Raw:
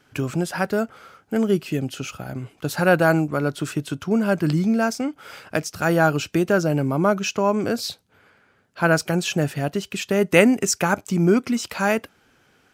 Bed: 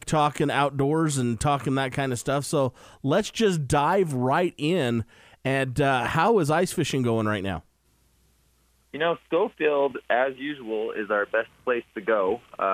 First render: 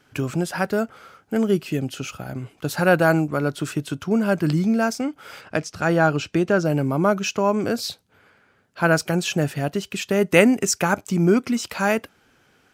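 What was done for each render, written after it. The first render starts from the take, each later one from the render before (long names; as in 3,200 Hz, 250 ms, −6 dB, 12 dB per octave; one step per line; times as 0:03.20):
0:05.41–0:06.65: high-frequency loss of the air 55 metres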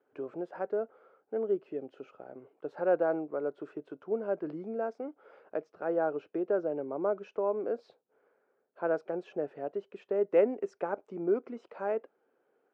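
four-pole ladder band-pass 530 Hz, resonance 45%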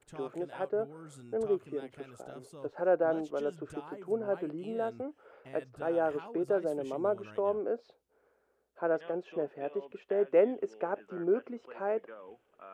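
mix in bed −26 dB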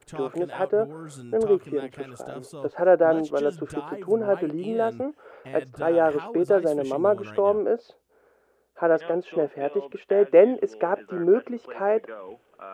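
level +9.5 dB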